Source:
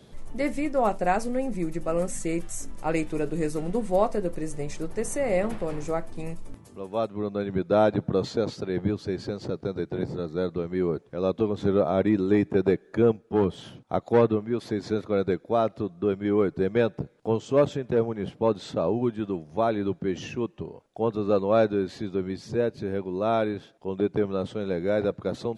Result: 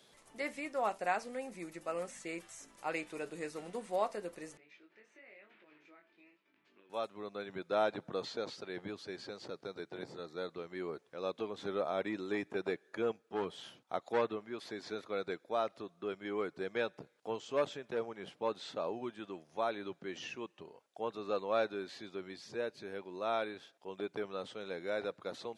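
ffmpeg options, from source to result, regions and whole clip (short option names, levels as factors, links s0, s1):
-filter_complex "[0:a]asettb=1/sr,asplit=3[s0][s1][s2];[s0]atrim=end=4.574[s3];[s1]atrim=start=4.57:end=6.9,asetpts=PTS-STARTPTS,afade=t=in:d=0.004:c=qsin,afade=t=out:st=2.326:d=0.004:c=qsin,acompressor=threshold=0.01:ratio=4:attack=3.2:release=140:knee=1:detection=peak,flanger=delay=19.5:depth=3.2:speed=1,highpass=270,equalizer=f=330:t=q:w=4:g=6,equalizer=f=500:t=q:w=4:g=-9,equalizer=f=780:t=q:w=4:g=-10,equalizer=f=1100:t=q:w=4:g=-6,equalizer=f=1600:t=q:w=4:g=3,equalizer=f=2400:t=q:w=4:g=5,lowpass=f=3600:w=0.5412,lowpass=f=3600:w=1.3066[s4];[s2]atrim=start=6.896[s5];[s3][s4]acrossfade=d=0.004:c1=hsin:c2=qsin[s6];[s6][s5]acrossfade=d=0.004:c1=qsin:c2=hsin,highpass=f=1400:p=1,acrossover=split=4800[s7][s8];[s8]acompressor=threshold=0.002:ratio=4:attack=1:release=60[s9];[s7][s9]amix=inputs=2:normalize=0,volume=0.708"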